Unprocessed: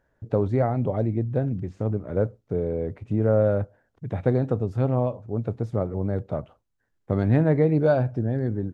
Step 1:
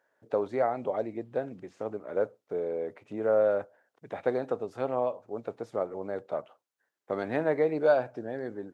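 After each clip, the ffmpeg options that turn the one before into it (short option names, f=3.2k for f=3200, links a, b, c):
-af "highpass=490"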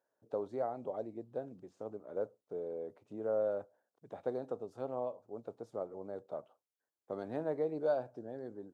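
-af "equalizer=f=2.1k:w=1.2:g=-13,volume=-8dB"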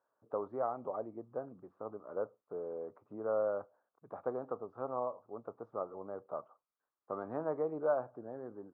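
-af "lowpass=f=1.2k:t=q:w=4.9,volume=-2dB"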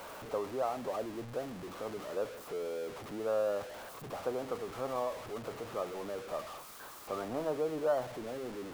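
-af "aeval=exprs='val(0)+0.5*0.01*sgn(val(0))':c=same"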